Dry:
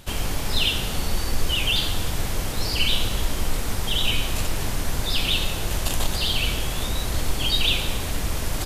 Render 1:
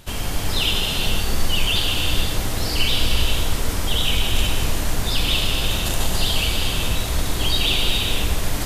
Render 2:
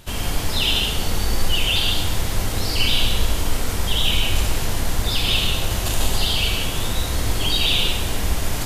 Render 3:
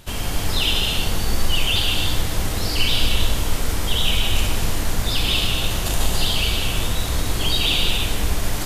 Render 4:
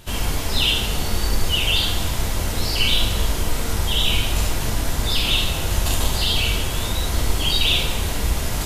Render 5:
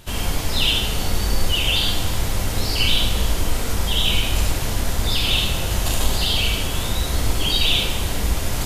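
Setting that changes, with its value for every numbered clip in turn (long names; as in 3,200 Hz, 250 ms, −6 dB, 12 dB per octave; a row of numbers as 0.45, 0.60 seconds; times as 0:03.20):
reverb whose tail is shaped and stops, gate: 540, 220, 360, 90, 130 milliseconds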